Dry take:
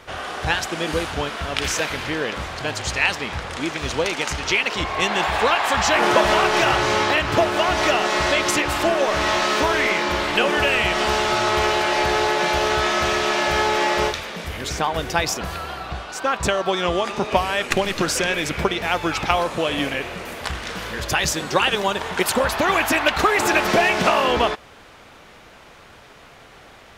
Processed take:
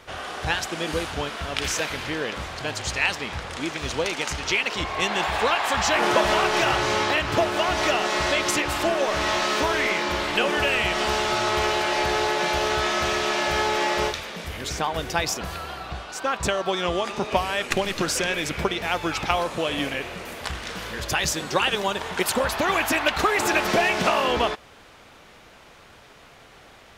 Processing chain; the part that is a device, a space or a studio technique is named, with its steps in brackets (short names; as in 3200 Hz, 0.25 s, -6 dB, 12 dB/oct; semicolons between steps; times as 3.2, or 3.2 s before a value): exciter from parts (in parallel at -13.5 dB: HPF 2100 Hz + soft clip -18.5 dBFS, distortion -15 dB); on the sum: gain -3.5 dB